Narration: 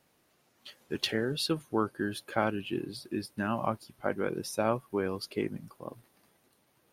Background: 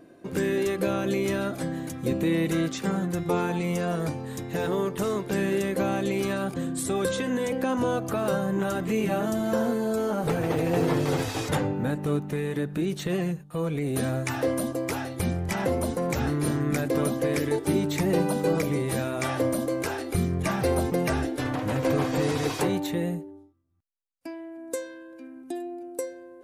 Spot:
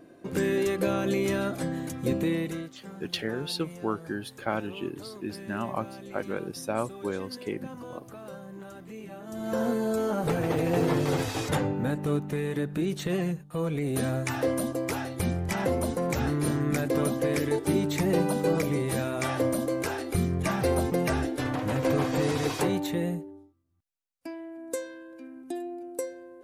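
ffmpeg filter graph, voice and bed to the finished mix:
-filter_complex "[0:a]adelay=2100,volume=0.891[s0];[1:a]volume=5.62,afade=t=out:st=2.14:d=0.56:silence=0.158489,afade=t=in:st=9.25:d=0.44:silence=0.16788[s1];[s0][s1]amix=inputs=2:normalize=0"

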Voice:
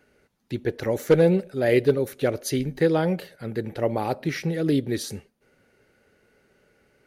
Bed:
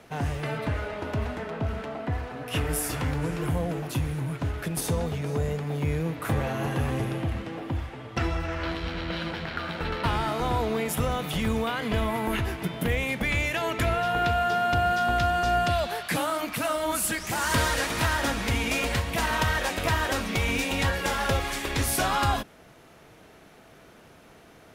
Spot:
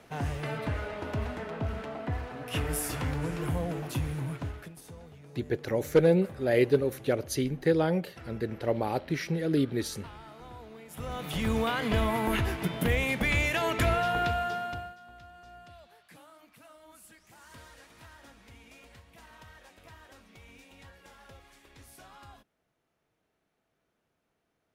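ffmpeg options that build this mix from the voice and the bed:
-filter_complex "[0:a]adelay=4850,volume=0.631[s0];[1:a]volume=6.68,afade=t=out:st=4.28:d=0.48:silence=0.141254,afade=t=in:st=10.89:d=0.74:silence=0.1,afade=t=out:st=13.91:d=1.04:silence=0.0473151[s1];[s0][s1]amix=inputs=2:normalize=0"

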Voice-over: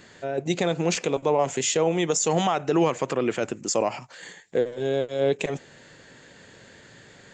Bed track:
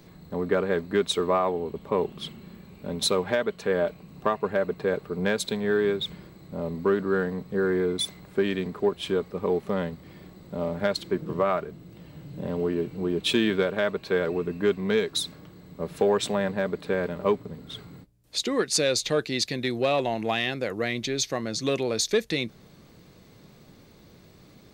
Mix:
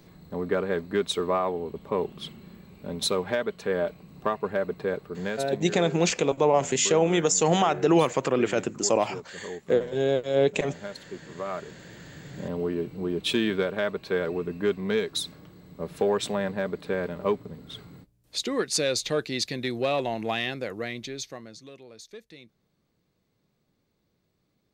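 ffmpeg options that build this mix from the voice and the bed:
-filter_complex "[0:a]adelay=5150,volume=1.12[s0];[1:a]volume=2.66,afade=t=out:st=4.8:d=0.94:silence=0.298538,afade=t=in:st=11.34:d=0.58:silence=0.298538,afade=t=out:st=20.43:d=1.26:silence=0.112202[s1];[s0][s1]amix=inputs=2:normalize=0"

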